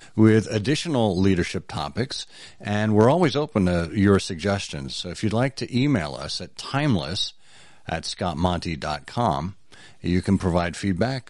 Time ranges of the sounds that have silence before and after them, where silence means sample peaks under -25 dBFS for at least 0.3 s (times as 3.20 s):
2.65–7.28 s
7.89–9.47 s